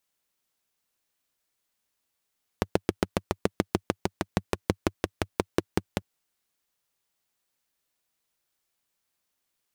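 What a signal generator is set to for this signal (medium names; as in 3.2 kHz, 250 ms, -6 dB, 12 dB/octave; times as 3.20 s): single-cylinder engine model, changing speed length 3.40 s, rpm 900, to 600, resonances 98/190/330 Hz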